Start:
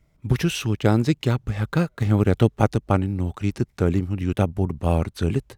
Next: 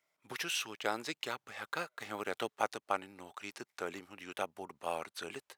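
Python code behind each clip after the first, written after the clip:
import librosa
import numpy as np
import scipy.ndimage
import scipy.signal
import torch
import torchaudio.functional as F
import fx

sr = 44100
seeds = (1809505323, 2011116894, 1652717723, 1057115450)

y = scipy.signal.sosfilt(scipy.signal.butter(2, 800.0, 'highpass', fs=sr, output='sos'), x)
y = y * librosa.db_to_amplitude(-6.0)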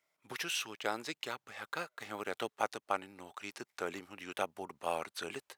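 y = fx.rider(x, sr, range_db=4, speed_s=2.0)
y = y * librosa.db_to_amplitude(-1.0)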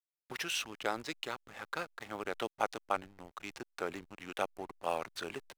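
y = fx.backlash(x, sr, play_db=-43.5)
y = y * librosa.db_to_amplitude(1.0)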